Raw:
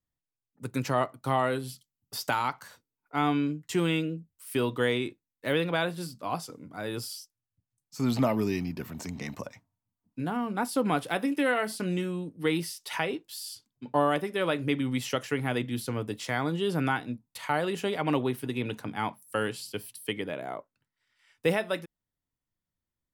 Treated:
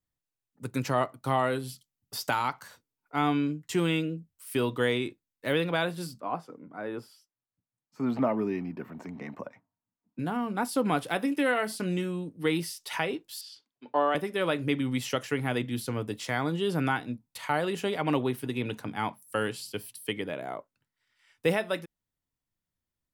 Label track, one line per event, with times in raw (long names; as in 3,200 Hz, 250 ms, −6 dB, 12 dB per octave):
6.200000	10.190000	three-way crossover with the lows and the highs turned down lows −17 dB, under 160 Hz, highs −20 dB, over 2,200 Hz
13.410000	14.150000	three-way crossover with the lows and the highs turned down lows −22 dB, under 290 Hz, highs −23 dB, over 5,100 Hz